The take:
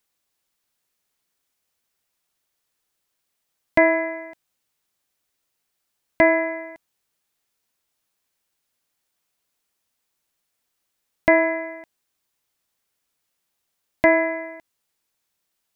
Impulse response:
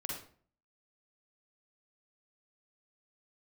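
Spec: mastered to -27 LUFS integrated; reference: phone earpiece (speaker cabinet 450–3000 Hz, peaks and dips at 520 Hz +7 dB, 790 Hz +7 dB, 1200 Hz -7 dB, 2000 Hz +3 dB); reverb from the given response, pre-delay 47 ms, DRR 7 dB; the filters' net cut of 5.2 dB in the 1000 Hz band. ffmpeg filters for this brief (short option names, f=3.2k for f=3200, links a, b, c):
-filter_complex "[0:a]equalizer=f=1k:t=o:g=-9,asplit=2[a][b];[1:a]atrim=start_sample=2205,adelay=47[c];[b][c]afir=irnorm=-1:irlink=0,volume=-7.5dB[d];[a][d]amix=inputs=2:normalize=0,highpass=450,equalizer=f=520:t=q:w=4:g=7,equalizer=f=790:t=q:w=4:g=7,equalizer=f=1.2k:t=q:w=4:g=-7,equalizer=f=2k:t=q:w=4:g=3,lowpass=f=3k:w=0.5412,lowpass=f=3k:w=1.3066,volume=-5.5dB"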